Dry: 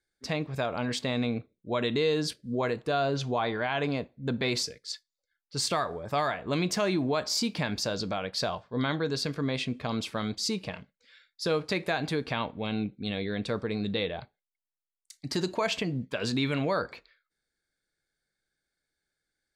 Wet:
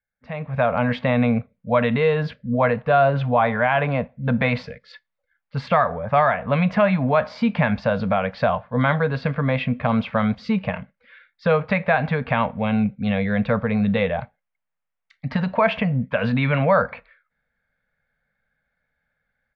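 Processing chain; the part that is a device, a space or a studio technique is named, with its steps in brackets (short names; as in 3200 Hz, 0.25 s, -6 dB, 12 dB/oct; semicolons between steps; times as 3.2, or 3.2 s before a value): Chebyshev band-stop 230–520 Hz, order 2; action camera in a waterproof case (LPF 2400 Hz 24 dB/oct; AGC gain up to 16 dB; gain -3 dB; AAC 96 kbps 22050 Hz)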